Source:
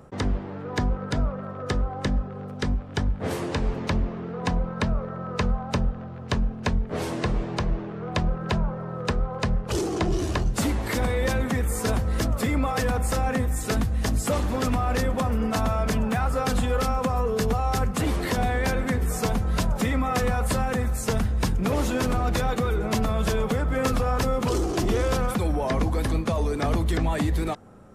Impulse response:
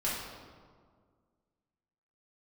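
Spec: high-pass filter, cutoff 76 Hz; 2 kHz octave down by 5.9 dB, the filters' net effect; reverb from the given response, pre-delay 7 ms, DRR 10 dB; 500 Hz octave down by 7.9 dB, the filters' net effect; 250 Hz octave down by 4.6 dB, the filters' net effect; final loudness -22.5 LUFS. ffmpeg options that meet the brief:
-filter_complex "[0:a]highpass=76,equalizer=f=250:t=o:g=-4,equalizer=f=500:t=o:g=-8,equalizer=f=2000:t=o:g=-7,asplit=2[s0][s1];[1:a]atrim=start_sample=2205,adelay=7[s2];[s1][s2]afir=irnorm=-1:irlink=0,volume=0.141[s3];[s0][s3]amix=inputs=2:normalize=0,volume=2.51"

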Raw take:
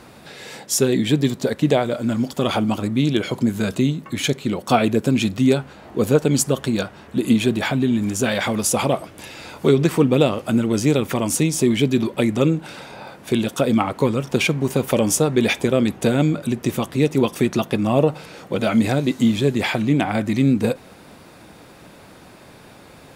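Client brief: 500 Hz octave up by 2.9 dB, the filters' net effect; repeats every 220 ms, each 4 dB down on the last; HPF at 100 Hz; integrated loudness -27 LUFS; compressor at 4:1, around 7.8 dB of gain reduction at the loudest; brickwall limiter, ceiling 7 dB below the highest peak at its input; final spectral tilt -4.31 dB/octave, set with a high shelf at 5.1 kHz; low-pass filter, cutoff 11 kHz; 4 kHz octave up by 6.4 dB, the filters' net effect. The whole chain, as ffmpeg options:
-af "highpass=100,lowpass=11000,equalizer=f=500:t=o:g=3.5,equalizer=f=4000:t=o:g=5,highshelf=f=5100:g=7.5,acompressor=threshold=0.126:ratio=4,alimiter=limit=0.251:level=0:latency=1,aecho=1:1:220|440|660|880|1100|1320|1540|1760|1980:0.631|0.398|0.25|0.158|0.0994|0.0626|0.0394|0.0249|0.0157,volume=0.531"

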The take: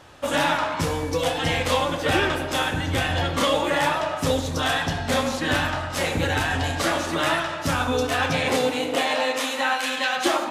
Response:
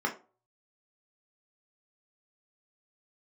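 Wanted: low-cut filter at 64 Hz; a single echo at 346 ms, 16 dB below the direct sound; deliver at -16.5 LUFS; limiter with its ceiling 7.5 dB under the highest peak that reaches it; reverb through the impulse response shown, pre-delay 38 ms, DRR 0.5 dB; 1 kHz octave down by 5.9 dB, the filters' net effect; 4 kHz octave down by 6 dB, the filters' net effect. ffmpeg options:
-filter_complex "[0:a]highpass=64,equalizer=f=1000:t=o:g=-7.5,equalizer=f=4000:t=o:g=-7.5,alimiter=limit=0.133:level=0:latency=1,aecho=1:1:346:0.158,asplit=2[s0][s1];[1:a]atrim=start_sample=2205,adelay=38[s2];[s1][s2]afir=irnorm=-1:irlink=0,volume=0.355[s3];[s0][s3]amix=inputs=2:normalize=0,volume=2.66"

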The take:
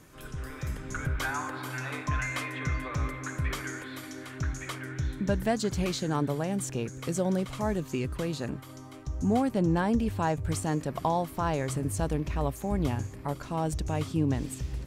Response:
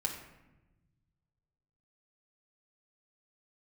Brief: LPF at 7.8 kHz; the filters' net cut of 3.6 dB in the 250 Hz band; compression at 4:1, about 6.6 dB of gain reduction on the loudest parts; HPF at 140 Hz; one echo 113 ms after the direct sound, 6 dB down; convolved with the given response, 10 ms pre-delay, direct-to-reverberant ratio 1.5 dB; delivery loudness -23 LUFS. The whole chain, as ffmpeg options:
-filter_complex "[0:a]highpass=140,lowpass=7800,equalizer=f=250:t=o:g=-4,acompressor=threshold=0.0282:ratio=4,aecho=1:1:113:0.501,asplit=2[s0][s1];[1:a]atrim=start_sample=2205,adelay=10[s2];[s1][s2]afir=irnorm=-1:irlink=0,volume=0.596[s3];[s0][s3]amix=inputs=2:normalize=0,volume=3.16"

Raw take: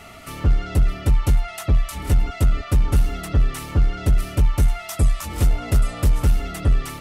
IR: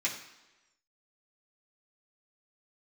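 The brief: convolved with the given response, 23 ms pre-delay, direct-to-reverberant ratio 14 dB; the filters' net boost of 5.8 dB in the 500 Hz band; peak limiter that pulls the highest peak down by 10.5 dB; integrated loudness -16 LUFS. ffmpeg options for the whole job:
-filter_complex "[0:a]equalizer=f=500:t=o:g=7.5,alimiter=limit=0.119:level=0:latency=1,asplit=2[s0][s1];[1:a]atrim=start_sample=2205,adelay=23[s2];[s1][s2]afir=irnorm=-1:irlink=0,volume=0.0944[s3];[s0][s3]amix=inputs=2:normalize=0,volume=4.22"

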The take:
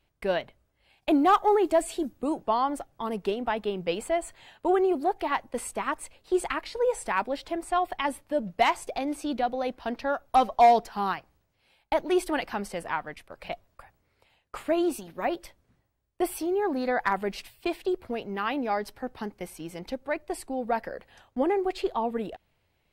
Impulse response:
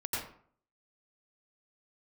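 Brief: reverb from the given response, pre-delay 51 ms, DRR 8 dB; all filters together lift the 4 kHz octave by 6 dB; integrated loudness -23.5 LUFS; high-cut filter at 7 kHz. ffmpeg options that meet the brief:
-filter_complex "[0:a]lowpass=7000,equalizer=f=4000:t=o:g=8.5,asplit=2[s0][s1];[1:a]atrim=start_sample=2205,adelay=51[s2];[s1][s2]afir=irnorm=-1:irlink=0,volume=0.237[s3];[s0][s3]amix=inputs=2:normalize=0,volume=1.58"

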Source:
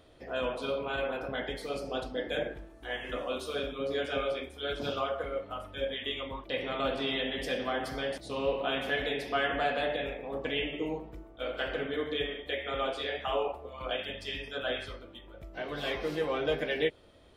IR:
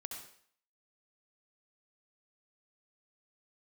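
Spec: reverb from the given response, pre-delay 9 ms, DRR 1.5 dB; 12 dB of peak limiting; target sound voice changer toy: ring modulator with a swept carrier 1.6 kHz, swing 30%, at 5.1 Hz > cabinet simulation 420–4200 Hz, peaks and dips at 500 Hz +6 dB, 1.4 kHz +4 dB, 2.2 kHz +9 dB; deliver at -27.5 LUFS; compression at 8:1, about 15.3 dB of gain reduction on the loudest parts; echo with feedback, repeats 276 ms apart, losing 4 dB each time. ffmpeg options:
-filter_complex "[0:a]acompressor=threshold=0.00891:ratio=8,alimiter=level_in=5.96:limit=0.0631:level=0:latency=1,volume=0.168,aecho=1:1:276|552|828|1104|1380|1656|1932|2208|2484:0.631|0.398|0.25|0.158|0.0994|0.0626|0.0394|0.0249|0.0157,asplit=2[s0][s1];[1:a]atrim=start_sample=2205,adelay=9[s2];[s1][s2]afir=irnorm=-1:irlink=0,volume=1.12[s3];[s0][s3]amix=inputs=2:normalize=0,aeval=exprs='val(0)*sin(2*PI*1600*n/s+1600*0.3/5.1*sin(2*PI*5.1*n/s))':c=same,highpass=420,equalizer=f=500:t=q:w=4:g=6,equalizer=f=1400:t=q:w=4:g=4,equalizer=f=2200:t=q:w=4:g=9,lowpass=f=4200:w=0.5412,lowpass=f=4200:w=1.3066,volume=4.73"

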